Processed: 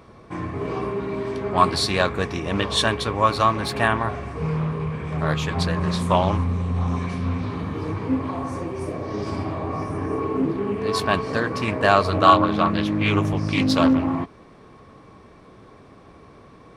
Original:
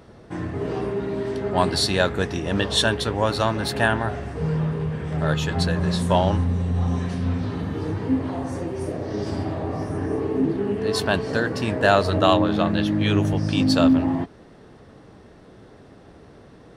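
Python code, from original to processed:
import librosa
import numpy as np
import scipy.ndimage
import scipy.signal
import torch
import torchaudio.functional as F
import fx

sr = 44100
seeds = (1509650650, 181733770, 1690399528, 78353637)

y = fx.small_body(x, sr, hz=(1100.0, 2300.0), ring_ms=40, db=15)
y = fx.doppler_dist(y, sr, depth_ms=0.24)
y = y * 10.0 ** (-1.0 / 20.0)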